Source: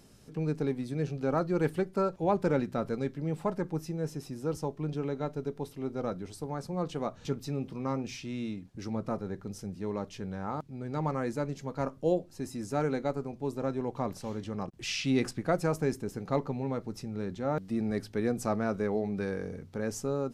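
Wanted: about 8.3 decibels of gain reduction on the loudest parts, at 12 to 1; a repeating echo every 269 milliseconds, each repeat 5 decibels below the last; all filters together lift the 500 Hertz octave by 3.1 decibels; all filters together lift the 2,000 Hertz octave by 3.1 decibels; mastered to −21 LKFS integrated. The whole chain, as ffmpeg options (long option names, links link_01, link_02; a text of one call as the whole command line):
ffmpeg -i in.wav -af "equalizer=frequency=500:width_type=o:gain=3.5,equalizer=frequency=2000:width_type=o:gain=4,acompressor=threshold=-28dB:ratio=12,aecho=1:1:269|538|807|1076|1345|1614|1883:0.562|0.315|0.176|0.0988|0.0553|0.031|0.0173,volume=13dB" out.wav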